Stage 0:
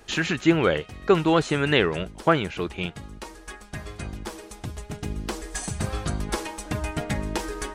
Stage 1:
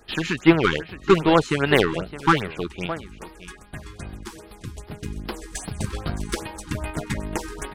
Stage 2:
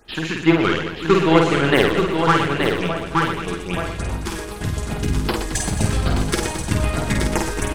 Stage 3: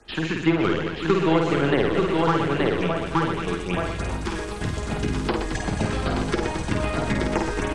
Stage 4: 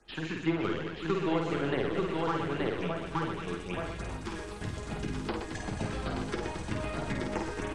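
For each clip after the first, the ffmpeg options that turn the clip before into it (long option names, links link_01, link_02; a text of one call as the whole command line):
ffmpeg -i in.wav -af "aeval=exprs='0.501*(cos(1*acos(clip(val(0)/0.501,-1,1)))-cos(1*PI/2))+0.0251*(cos(3*acos(clip(val(0)/0.501,-1,1)))-cos(3*PI/2))+0.0282*(cos(7*acos(clip(val(0)/0.501,-1,1)))-cos(7*PI/2))+0.01*(cos(8*acos(clip(val(0)/0.501,-1,1)))-cos(8*PI/2))':channel_layout=same,aecho=1:1:615:0.188,afftfilt=real='re*(1-between(b*sr/1024,550*pow(7800/550,0.5+0.5*sin(2*PI*2.5*pts/sr))/1.41,550*pow(7800/550,0.5+0.5*sin(2*PI*2.5*pts/sr))*1.41))':imag='im*(1-between(b*sr/1024,550*pow(7800/550,0.5+0.5*sin(2*PI*2.5*pts/sr))/1.41,550*pow(7800/550,0.5+0.5*sin(2*PI*2.5*pts/sr))*1.41))':win_size=1024:overlap=0.75,volume=5dB" out.wav
ffmpeg -i in.wav -filter_complex "[0:a]asplit=2[link_01][link_02];[link_02]aecho=0:1:876:0.531[link_03];[link_01][link_03]amix=inputs=2:normalize=0,dynaudnorm=framelen=350:gausssize=5:maxgain=11.5dB,asplit=2[link_04][link_05];[link_05]aecho=0:1:50|120|218|355.2|547.3:0.631|0.398|0.251|0.158|0.1[link_06];[link_04][link_06]amix=inputs=2:normalize=0,volume=-1dB" out.wav
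ffmpeg -i in.wav -filter_complex "[0:a]acrossover=split=6100[link_01][link_02];[link_02]acompressor=threshold=-41dB:ratio=4:attack=1:release=60[link_03];[link_01][link_03]amix=inputs=2:normalize=0,lowpass=frequency=9600:width=0.5412,lowpass=frequency=9600:width=1.3066,acrossover=split=200|980|2800[link_04][link_05][link_06][link_07];[link_04]acompressor=threshold=-27dB:ratio=4[link_08];[link_05]acompressor=threshold=-19dB:ratio=4[link_09];[link_06]acompressor=threshold=-31dB:ratio=4[link_10];[link_07]acompressor=threshold=-40dB:ratio=4[link_11];[link_08][link_09][link_10][link_11]amix=inputs=4:normalize=0" out.wav
ffmpeg -i in.wav -af "flanger=delay=5.1:depth=6.9:regen=-59:speed=1:shape=triangular,volume=-5.5dB" out.wav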